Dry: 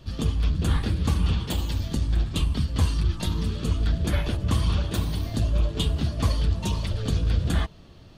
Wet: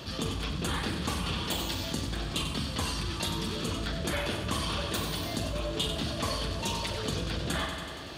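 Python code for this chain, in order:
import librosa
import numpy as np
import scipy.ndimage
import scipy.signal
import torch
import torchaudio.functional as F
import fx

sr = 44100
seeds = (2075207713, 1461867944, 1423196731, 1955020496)

y = fx.highpass(x, sr, hz=460.0, slope=6)
y = fx.doubler(y, sr, ms=42.0, db=-11.0)
y = fx.echo_feedback(y, sr, ms=94, feedback_pct=59, wet_db=-11)
y = fx.env_flatten(y, sr, amount_pct=50)
y = y * 10.0 ** (-1.5 / 20.0)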